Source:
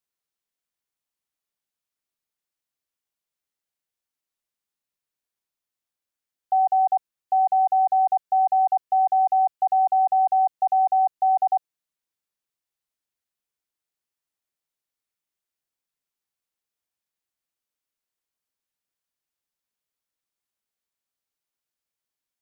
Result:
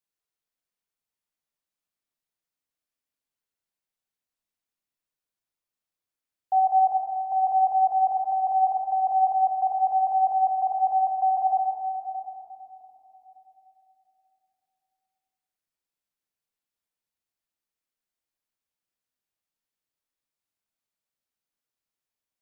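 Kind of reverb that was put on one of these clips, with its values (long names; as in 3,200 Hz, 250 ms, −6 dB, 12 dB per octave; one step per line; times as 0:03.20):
rectangular room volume 220 cubic metres, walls hard, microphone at 0.48 metres
level −4.5 dB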